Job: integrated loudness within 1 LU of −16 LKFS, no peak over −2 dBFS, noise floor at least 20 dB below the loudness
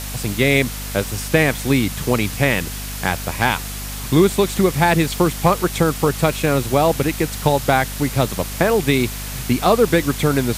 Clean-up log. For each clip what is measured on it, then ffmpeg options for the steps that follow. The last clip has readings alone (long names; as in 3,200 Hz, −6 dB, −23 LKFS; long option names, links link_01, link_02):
mains hum 50 Hz; hum harmonics up to 250 Hz; level of the hum −29 dBFS; background noise floor −29 dBFS; target noise floor −39 dBFS; integrated loudness −18.5 LKFS; sample peak −2.0 dBFS; target loudness −16.0 LKFS
→ -af "bandreject=frequency=50:width_type=h:width=4,bandreject=frequency=100:width_type=h:width=4,bandreject=frequency=150:width_type=h:width=4,bandreject=frequency=200:width_type=h:width=4,bandreject=frequency=250:width_type=h:width=4"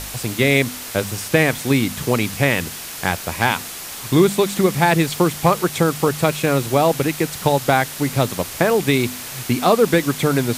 mains hum none found; background noise floor −32 dBFS; target noise floor −39 dBFS
→ -af "afftdn=noise_reduction=7:noise_floor=-32"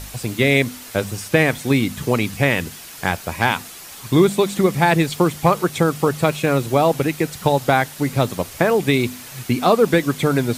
background noise floor −38 dBFS; target noise floor −39 dBFS
→ -af "afftdn=noise_reduction=6:noise_floor=-38"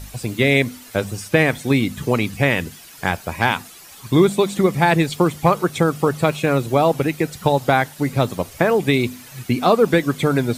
background noise floor −42 dBFS; integrated loudness −19.0 LKFS; sample peak −2.0 dBFS; target loudness −16.0 LKFS
→ -af "volume=3dB,alimiter=limit=-2dB:level=0:latency=1"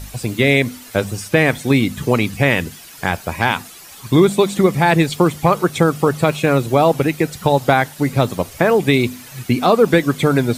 integrated loudness −16.5 LKFS; sample peak −2.0 dBFS; background noise floor −39 dBFS